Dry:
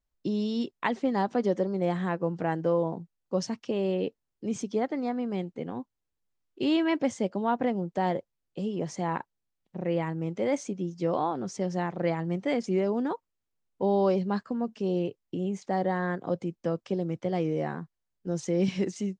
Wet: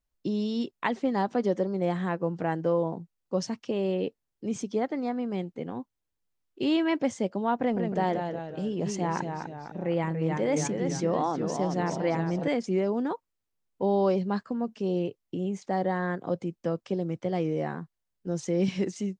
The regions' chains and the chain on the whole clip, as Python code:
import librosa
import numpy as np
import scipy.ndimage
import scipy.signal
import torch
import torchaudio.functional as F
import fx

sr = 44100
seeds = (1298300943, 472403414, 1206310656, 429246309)

y = fx.chain(x, sr, fx.echo_pitch(ms=155, semitones=-1, count=3, db_per_echo=-6.0),
    fx.sustainer(db_per_s=49.0), at=(7.6, 12.48))